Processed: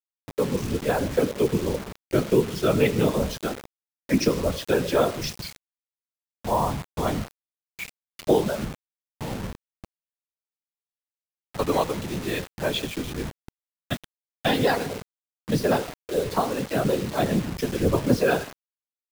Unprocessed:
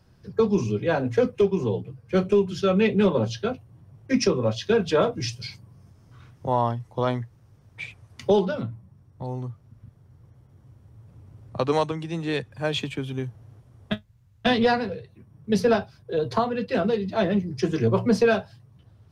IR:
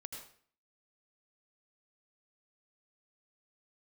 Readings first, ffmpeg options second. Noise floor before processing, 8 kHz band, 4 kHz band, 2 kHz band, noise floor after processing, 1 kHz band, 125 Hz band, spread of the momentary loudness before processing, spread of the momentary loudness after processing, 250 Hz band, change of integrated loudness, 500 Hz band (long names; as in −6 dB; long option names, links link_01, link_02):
−57 dBFS, +4.5 dB, +0.5 dB, 0.0 dB, below −85 dBFS, 0.0 dB, −0.5 dB, 15 LU, 16 LU, −1.0 dB, −1.0 dB, −1.5 dB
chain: -filter_complex "[0:a]asplit=2[link_01][link_02];[1:a]atrim=start_sample=2205[link_03];[link_02][link_03]afir=irnorm=-1:irlink=0,volume=-6.5dB[link_04];[link_01][link_04]amix=inputs=2:normalize=0,dynaudnorm=framelen=190:gausssize=7:maxgain=3.5dB,afftfilt=real='hypot(re,im)*cos(2*PI*random(0))':imag='hypot(re,im)*sin(2*PI*random(1))':win_size=512:overlap=0.75,acrusher=bits=5:mix=0:aa=0.000001"